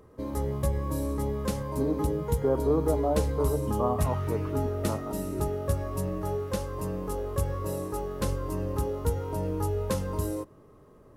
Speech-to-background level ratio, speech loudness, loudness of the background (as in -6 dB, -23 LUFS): -0.5 dB, -31.5 LUFS, -31.0 LUFS